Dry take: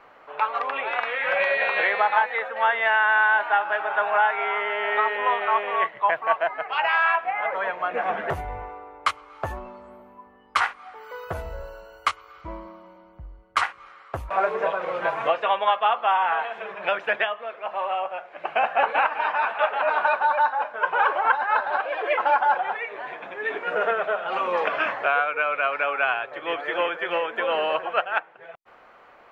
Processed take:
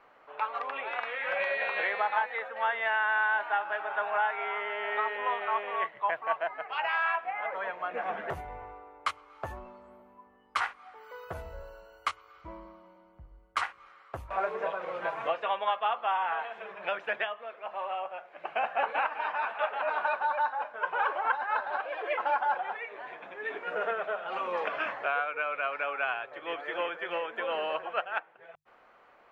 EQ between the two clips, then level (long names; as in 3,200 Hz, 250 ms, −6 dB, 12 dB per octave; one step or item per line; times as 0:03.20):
mains-hum notches 50/100/150 Hz
−8.0 dB